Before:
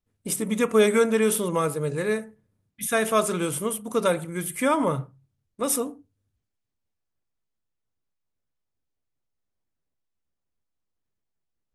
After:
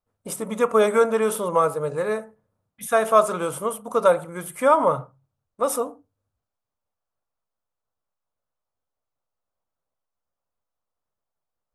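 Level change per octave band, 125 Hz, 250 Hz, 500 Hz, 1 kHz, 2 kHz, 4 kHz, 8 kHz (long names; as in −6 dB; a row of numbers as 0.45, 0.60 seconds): −4.5, −4.5, +3.5, +6.5, −1.0, −4.5, −4.5 decibels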